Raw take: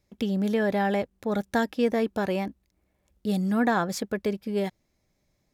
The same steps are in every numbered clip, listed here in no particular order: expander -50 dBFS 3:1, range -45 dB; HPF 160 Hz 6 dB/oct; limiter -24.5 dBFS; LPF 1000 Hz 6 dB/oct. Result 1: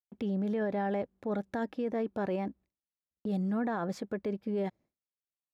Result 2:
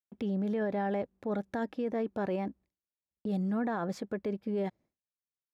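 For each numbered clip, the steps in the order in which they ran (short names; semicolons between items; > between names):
LPF > expander > limiter > HPF; expander > LPF > limiter > HPF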